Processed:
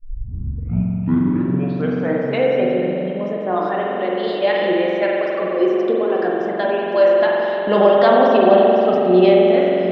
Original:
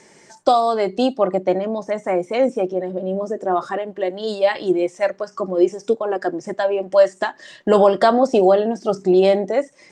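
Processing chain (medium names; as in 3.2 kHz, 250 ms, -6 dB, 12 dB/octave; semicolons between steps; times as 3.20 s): tape start-up on the opening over 2.48 s; low-pass 3.5 kHz 24 dB/octave; treble shelf 2.3 kHz +10.5 dB; on a send: repeats whose band climbs or falls 747 ms, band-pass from 170 Hz, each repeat 0.7 oct, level -6 dB; on the sum: spring tank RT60 3.2 s, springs 44 ms, chirp 55 ms, DRR -3 dB; trim -4 dB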